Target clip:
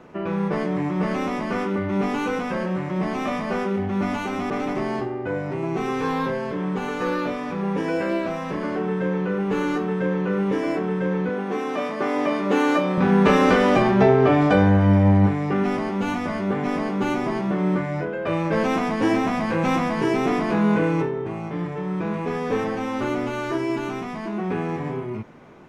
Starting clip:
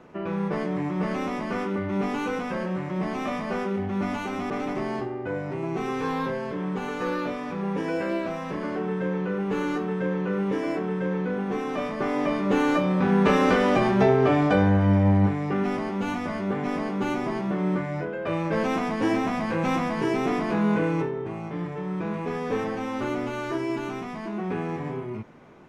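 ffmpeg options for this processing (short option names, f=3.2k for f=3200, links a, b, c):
-filter_complex "[0:a]asettb=1/sr,asplit=3[a][b][c];[a]atrim=end=11.294[d];[b]atrim=start=11.29:end=12.98,asetpts=PTS-STARTPTS,afade=t=in:d=0.004:c=qsin,afade=t=out:st=1.686:d=0.004:c=qsin,highpass=230[e];[c]atrim=start=12.976[f];[d][e]acrossfade=d=0.004:c1=hsin:c2=qsin[g];[g][f]acrossfade=d=0.004:c1=qsin:c2=hsin,asettb=1/sr,asplit=3[h][i][j];[h]atrim=end=13.824[k];[i]atrim=start=13.82:end=14.41,asetpts=PTS-STARTPTS,afade=t=in:d=0.004:c=qsin,afade=t=out:st=0.586:d=0.004:c=qsin,highshelf=f=6.5k:g=-8.5[l];[j]atrim=start=14.406[m];[k][l]acrossfade=d=0.004:c1=hsin:c2=qsin[n];[n][m]acrossfade=d=0.004:c1=qsin:c2=hsin,volume=3.5dB"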